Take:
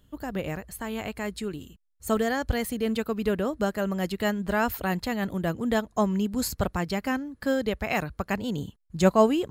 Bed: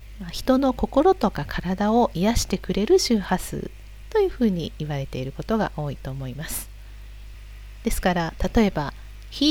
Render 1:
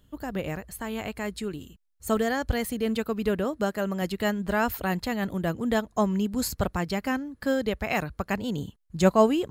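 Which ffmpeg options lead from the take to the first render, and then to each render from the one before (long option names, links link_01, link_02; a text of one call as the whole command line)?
ffmpeg -i in.wav -filter_complex "[0:a]asettb=1/sr,asplit=3[link_01][link_02][link_03];[link_01]atrim=end=3.444[link_04];[link_02]atrim=start=3.44:end=4.02,asetpts=PTS-STARTPTS,afade=type=in:duration=0.004:curve=qsin,afade=type=out:start_time=0.576:duration=0.004:curve=qsin,highpass=frequency=110:poles=1[link_05];[link_03]atrim=start=4.016[link_06];[link_04][link_05]acrossfade=duration=0.004:curve1=hsin:curve2=qsin[link_07];[link_07][link_06]acrossfade=duration=0.004:curve1=qsin:curve2=hsin" out.wav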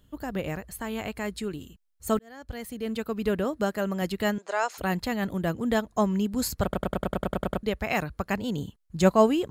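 ffmpeg -i in.wav -filter_complex "[0:a]asettb=1/sr,asplit=3[link_01][link_02][link_03];[link_01]atrim=end=4.384[link_04];[link_02]atrim=start=4.38:end=4.78,asetpts=PTS-STARTPTS,afade=type=in:duration=0.004:curve=qsin,afade=type=out:start_time=0.396:duration=0.004:curve=qsin,highpass=frequency=480:width=0.5412,highpass=frequency=480:width=1.3066,equalizer=frequency=1700:width_type=q:width=4:gain=-4,equalizer=frequency=3100:width_type=q:width=4:gain=-4,equalizer=frequency=6500:width_type=q:width=4:gain=8,lowpass=frequency=8000:width=0.5412,lowpass=frequency=8000:width=1.3066[link_05];[link_03]atrim=start=4.776[link_06];[link_04][link_05]acrossfade=duration=0.004:curve1=hsin:curve2=qsin[link_07];[link_07][link_06]acrossfade=duration=0.004:curve1=qsin:curve2=hsin,asplit=12[link_08][link_09][link_10][link_11][link_12][link_13][link_14][link_15][link_16][link_17][link_18][link_19];[link_08]atrim=end=2.19,asetpts=PTS-STARTPTS,afade=type=out:start_time=2.186:duration=0.004:curve=hsin[link_20];[link_09]atrim=start=2.19:end=6.732,asetpts=PTS-STARTPTS,afade=type=in:duration=1.16[link_21];[link_10]atrim=start=6.628:end=6.732[link_22];[link_11]atrim=start=6.628:end=6.732[link_23];[link_12]atrim=start=6.628:end=6.732[link_24];[link_13]atrim=start=6.628:end=6.732[link_25];[link_14]atrim=start=6.628:end=6.732[link_26];[link_15]atrim=start=6.628:end=6.732[link_27];[link_16]atrim=start=6.628:end=6.732[link_28];[link_17]atrim=start=6.628:end=6.732[link_29];[link_18]atrim=start=6.628:end=6.732[link_30];[link_19]atrim=start=7.628[link_31];[link_20][link_21]concat=n=2:v=0:a=1[link_32];[link_32][link_22]acrossfade=duration=0.004:curve1=hsin:curve2=hsin[link_33];[link_33][link_23]acrossfade=duration=0.004:curve1=hsin:curve2=hsin[link_34];[link_34][link_24]acrossfade=duration=0.004:curve1=hsin:curve2=hsin[link_35];[link_35][link_25]acrossfade=duration=0.004:curve1=hsin:curve2=hsin[link_36];[link_36][link_26]acrossfade=duration=0.004:curve1=hsin:curve2=hsin[link_37];[link_37][link_27]acrossfade=duration=0.004:curve1=hsin:curve2=hsin[link_38];[link_38][link_28]acrossfade=duration=0.004:curve1=hsin:curve2=hsin[link_39];[link_39][link_29]acrossfade=duration=0.004:curve1=hsin:curve2=hsin[link_40];[link_40][link_30]acrossfade=duration=0.004:curve1=hsin:curve2=hsin[link_41];[link_41][link_31]acrossfade=duration=0.004:curve1=hsin:curve2=hsin" out.wav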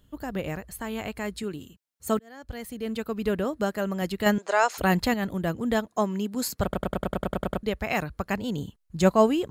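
ffmpeg -i in.wav -filter_complex "[0:a]asettb=1/sr,asplit=3[link_01][link_02][link_03];[link_01]atrim=end=1.434[link_04];[link_02]atrim=start=1.43:end=2.44,asetpts=PTS-STARTPTS,afade=type=in:duration=0.004:curve=qsin,afade=type=out:start_time=1.006:duration=0.004:curve=qsin,highpass=91[link_05];[link_03]atrim=start=2.436[link_06];[link_04][link_05]acrossfade=duration=0.004:curve1=hsin:curve2=qsin[link_07];[link_07][link_06]acrossfade=duration=0.004:curve1=qsin:curve2=hsin,asettb=1/sr,asplit=3[link_08][link_09][link_10];[link_08]atrim=end=4.264[link_11];[link_09]atrim=start=4.26:end=5.14,asetpts=PTS-STARTPTS,afade=type=in:duration=0.004:curve=qsin,afade=type=out:start_time=0.876:duration=0.004:curve=qsin,acontrast=35[link_12];[link_10]atrim=start=5.136[link_13];[link_11][link_12]acrossfade=duration=0.004:curve1=hsin:curve2=qsin[link_14];[link_14][link_13]acrossfade=duration=0.004:curve1=qsin:curve2=hsin,asettb=1/sr,asplit=3[link_15][link_16][link_17];[link_15]atrim=end=5.864[link_18];[link_16]atrim=start=5.86:end=6.59,asetpts=PTS-STARTPTS,afade=type=in:duration=0.004:curve=qsin,afade=type=out:start_time=0.726:duration=0.004:curve=qsin,highpass=210[link_19];[link_17]atrim=start=6.586[link_20];[link_18][link_19]acrossfade=duration=0.004:curve1=hsin:curve2=qsin[link_21];[link_21][link_20]acrossfade=duration=0.004:curve1=qsin:curve2=hsin" out.wav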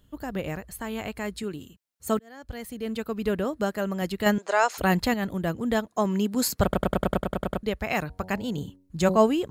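ffmpeg -i in.wav -filter_complex "[0:a]asettb=1/sr,asplit=3[link_01][link_02][link_03];[link_01]atrim=end=8.004[link_04];[link_02]atrim=start=8:end=9.17,asetpts=PTS-STARTPTS,afade=type=in:duration=0.004:curve=qsin,afade=type=out:start_time=1.166:duration=0.004:curve=qsin,bandreject=frequency=93.19:width_type=h:width=4,bandreject=frequency=186.38:width_type=h:width=4,bandreject=frequency=279.57:width_type=h:width=4,bandreject=frequency=372.76:width_type=h:width=4,bandreject=frequency=465.95:width_type=h:width=4,bandreject=frequency=559.14:width_type=h:width=4,bandreject=frequency=652.33:width_type=h:width=4,bandreject=frequency=745.52:width_type=h:width=4,bandreject=frequency=838.71:width_type=h:width=4,bandreject=frequency=931.9:width_type=h:width=4[link_05];[link_03]atrim=start=9.166[link_06];[link_04][link_05]acrossfade=duration=0.004:curve1=hsin:curve2=qsin[link_07];[link_07][link_06]acrossfade=duration=0.004:curve1=qsin:curve2=hsin,asplit=3[link_08][link_09][link_10];[link_08]atrim=end=6.052[link_11];[link_09]atrim=start=6.048:end=7.202,asetpts=PTS-STARTPTS,volume=4dB[link_12];[link_10]atrim=start=7.198[link_13];[link_11][link_12]acrossfade=duration=0.004:curve1=hsin:curve2=hsin[link_14];[link_14][link_13]acrossfade=duration=0.004:curve1=hsin:curve2=hsin" out.wav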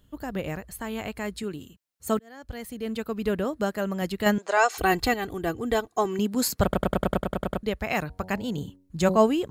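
ffmpeg -i in.wav -filter_complex "[0:a]asettb=1/sr,asplit=3[link_01][link_02][link_03];[link_01]atrim=end=4.574[link_04];[link_02]atrim=start=4.57:end=6.19,asetpts=PTS-STARTPTS,afade=type=in:duration=0.004:curve=qsin,afade=type=out:start_time=1.616:duration=0.004:curve=qsin,aecho=1:1:2.6:0.67,atrim=end_sample=71442[link_05];[link_03]atrim=start=6.186[link_06];[link_04][link_05]acrossfade=duration=0.004:curve1=hsin:curve2=qsin[link_07];[link_07][link_06]acrossfade=duration=0.004:curve1=qsin:curve2=hsin" out.wav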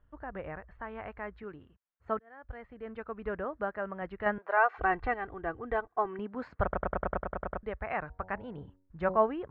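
ffmpeg -i in.wav -af "lowpass=frequency=1700:width=0.5412,lowpass=frequency=1700:width=1.3066,equalizer=frequency=210:width=0.48:gain=-14.5" out.wav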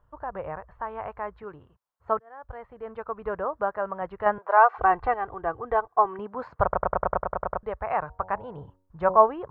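ffmpeg -i in.wav -af "equalizer=frequency=125:width_type=o:width=1:gain=6,equalizer=frequency=250:width_type=o:width=1:gain=-5,equalizer=frequency=500:width_type=o:width=1:gain=5,equalizer=frequency=1000:width_type=o:width=1:gain=12,equalizer=frequency=2000:width_type=o:width=1:gain=-4" out.wav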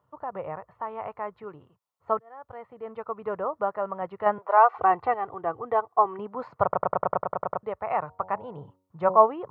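ffmpeg -i in.wav -af "highpass=frequency=110:width=0.5412,highpass=frequency=110:width=1.3066,bandreject=frequency=1600:width=5.3" out.wav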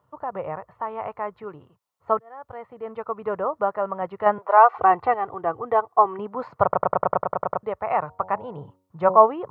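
ffmpeg -i in.wav -af "volume=4dB,alimiter=limit=-1dB:level=0:latency=1" out.wav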